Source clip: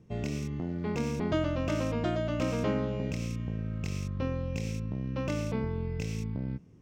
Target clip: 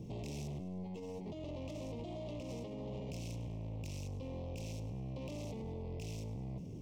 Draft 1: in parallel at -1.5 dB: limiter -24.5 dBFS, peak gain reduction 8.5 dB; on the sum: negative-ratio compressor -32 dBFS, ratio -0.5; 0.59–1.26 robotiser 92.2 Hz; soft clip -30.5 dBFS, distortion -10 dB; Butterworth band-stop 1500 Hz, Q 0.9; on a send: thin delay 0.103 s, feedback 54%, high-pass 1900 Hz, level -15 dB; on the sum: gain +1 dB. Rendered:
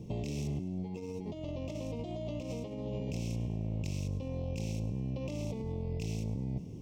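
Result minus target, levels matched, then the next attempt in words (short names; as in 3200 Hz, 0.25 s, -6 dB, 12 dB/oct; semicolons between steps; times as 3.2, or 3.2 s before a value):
soft clip: distortion -7 dB
in parallel at -1.5 dB: limiter -24.5 dBFS, peak gain reduction 8.5 dB; on the sum: negative-ratio compressor -32 dBFS, ratio -0.5; 0.59–1.26 robotiser 92.2 Hz; soft clip -41 dBFS, distortion -3 dB; Butterworth band-stop 1500 Hz, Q 0.9; on a send: thin delay 0.103 s, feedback 54%, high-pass 1900 Hz, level -15 dB; on the sum: gain +1 dB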